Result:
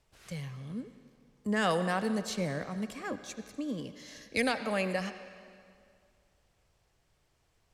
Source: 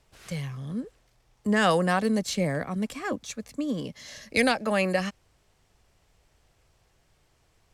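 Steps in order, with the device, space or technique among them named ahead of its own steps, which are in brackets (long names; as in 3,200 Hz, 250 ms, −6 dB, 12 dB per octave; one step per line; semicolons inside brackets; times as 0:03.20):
filtered reverb send (on a send: high-pass filter 430 Hz 6 dB per octave + low-pass filter 6,100 Hz + convolution reverb RT60 2.2 s, pre-delay 65 ms, DRR 10 dB)
on the sum: level −6.5 dB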